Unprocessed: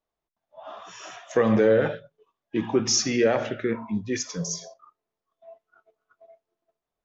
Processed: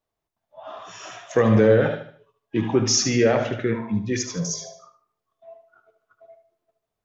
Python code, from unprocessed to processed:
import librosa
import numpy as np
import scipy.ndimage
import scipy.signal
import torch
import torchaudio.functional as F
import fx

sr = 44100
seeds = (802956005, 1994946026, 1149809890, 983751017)

p1 = fx.peak_eq(x, sr, hz=110.0, db=9.0, octaves=0.53)
p2 = p1 + fx.echo_feedback(p1, sr, ms=75, feedback_pct=38, wet_db=-9.5, dry=0)
y = F.gain(torch.from_numpy(p2), 2.0).numpy()